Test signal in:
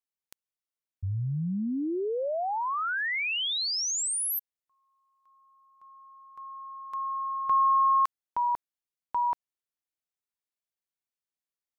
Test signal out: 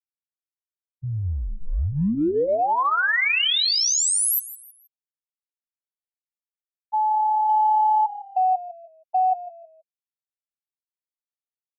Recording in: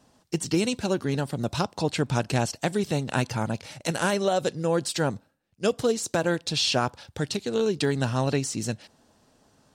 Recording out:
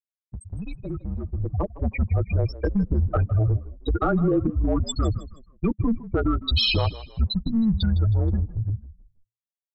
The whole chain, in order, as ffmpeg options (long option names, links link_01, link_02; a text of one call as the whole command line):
ffmpeg -i in.wav -filter_complex "[0:a]afftfilt=real='re*gte(hypot(re,im),0.141)':imag='im*gte(hypot(re,im),0.141)':win_size=1024:overlap=0.75,aecho=1:1:7.3:0.66,asubboost=boost=9.5:cutoff=75,acompressor=threshold=-29dB:ratio=8:attack=1.6:release=28:knee=6:detection=rms,afreqshift=-220,dynaudnorm=framelen=230:gausssize=13:maxgain=11.5dB,asplit=2[link_01][link_02];[link_02]asplit=3[link_03][link_04][link_05];[link_03]adelay=158,afreqshift=-35,volume=-16dB[link_06];[link_04]adelay=316,afreqshift=-70,volume=-25.1dB[link_07];[link_05]adelay=474,afreqshift=-105,volume=-34.2dB[link_08];[link_06][link_07][link_08]amix=inputs=3:normalize=0[link_09];[link_01][link_09]amix=inputs=2:normalize=0" out.wav